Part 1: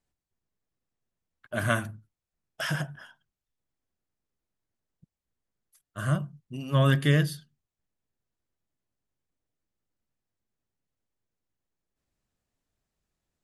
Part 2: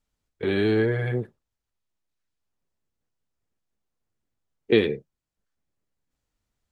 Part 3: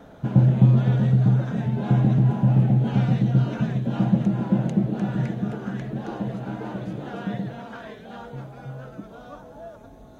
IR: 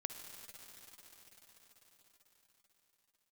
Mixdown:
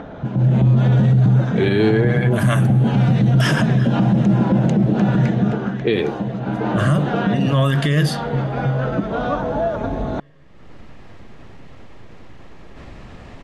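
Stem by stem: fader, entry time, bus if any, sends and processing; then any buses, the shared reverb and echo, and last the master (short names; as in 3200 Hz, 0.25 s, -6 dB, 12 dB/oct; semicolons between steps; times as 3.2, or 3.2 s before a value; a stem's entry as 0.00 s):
+2.0 dB, 0.80 s, bus A, send -14.5 dB, notch 1500 Hz, Q 13
+2.0 dB, 1.15 s, no bus, no send, dry
-0.5 dB, 0.00 s, bus A, no send, dry
bus A: 0.0 dB, upward compressor, threshold -24 dBFS; limiter -16 dBFS, peak gain reduction 10 dB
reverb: on, pre-delay 49 ms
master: low-pass opened by the level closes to 2300 Hz, open at -17 dBFS; AGC gain up to 13 dB; limiter -8 dBFS, peak gain reduction 7 dB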